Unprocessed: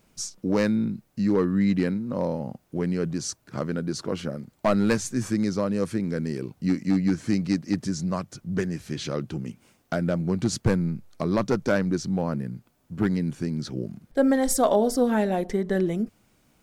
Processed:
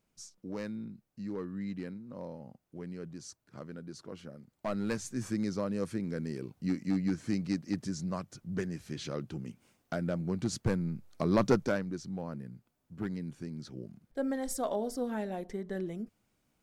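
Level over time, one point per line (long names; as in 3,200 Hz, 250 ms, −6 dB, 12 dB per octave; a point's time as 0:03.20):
0:04.30 −16 dB
0:05.30 −8 dB
0:10.84 −8 dB
0:11.51 −1 dB
0:11.86 −12.5 dB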